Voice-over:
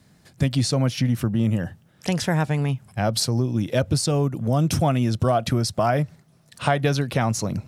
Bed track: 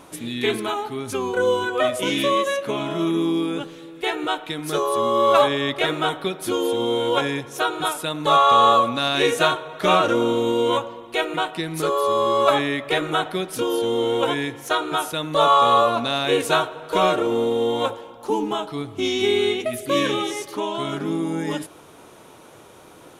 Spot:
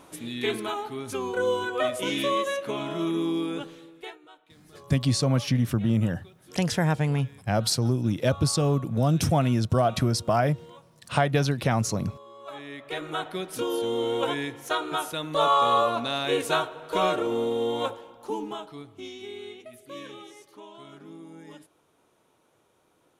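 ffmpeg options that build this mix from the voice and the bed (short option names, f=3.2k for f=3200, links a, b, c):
-filter_complex "[0:a]adelay=4500,volume=-2dB[a];[1:a]volume=17dB,afade=t=out:st=3.7:d=0.49:silence=0.0749894,afade=t=in:st=12.43:d=1.15:silence=0.0749894,afade=t=out:st=17.79:d=1.42:silence=0.188365[b];[a][b]amix=inputs=2:normalize=0"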